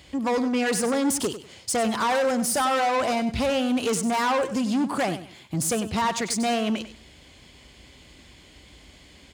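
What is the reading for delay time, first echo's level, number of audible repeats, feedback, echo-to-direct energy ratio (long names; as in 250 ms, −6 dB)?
97 ms, −12.0 dB, 2, 22%, −12.0 dB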